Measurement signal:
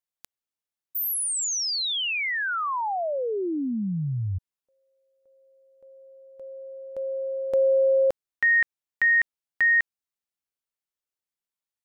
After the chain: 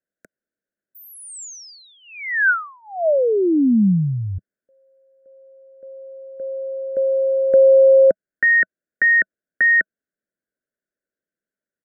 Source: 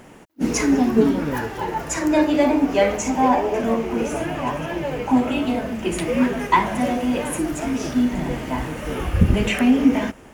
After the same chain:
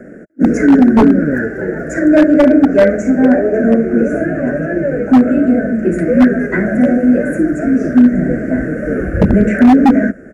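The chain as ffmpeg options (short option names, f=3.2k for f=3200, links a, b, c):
-filter_complex "[0:a]firequalizer=gain_entry='entry(110,0);entry(190,11);entry(410,10);entry(630,10);entry(930,-28);entry(1500,12);entry(3100,-29);entry(4900,-17);entry(7300,-9);entry(12000,-18)':delay=0.05:min_phase=1,acrossover=split=340|530|3900[a][b][c][d];[b]acompressor=threshold=-28dB:ratio=12:attack=57:release=681:knee=1[e];[a][e][c][d]amix=inputs=4:normalize=0,aeval=exprs='0.668*(abs(mod(val(0)/0.668+3,4)-2)-1)':c=same,volume=2.5dB"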